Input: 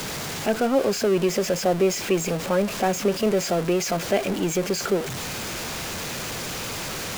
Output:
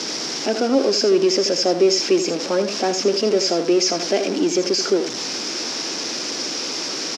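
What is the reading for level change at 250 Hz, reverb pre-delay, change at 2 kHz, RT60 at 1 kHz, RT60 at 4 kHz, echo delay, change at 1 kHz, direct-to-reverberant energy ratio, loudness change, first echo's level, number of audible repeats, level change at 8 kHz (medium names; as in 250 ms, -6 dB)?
+4.0 dB, no reverb, +0.5 dB, no reverb, no reverb, 81 ms, +0.5 dB, no reverb, +4.5 dB, -9.5 dB, 1, +5.0 dB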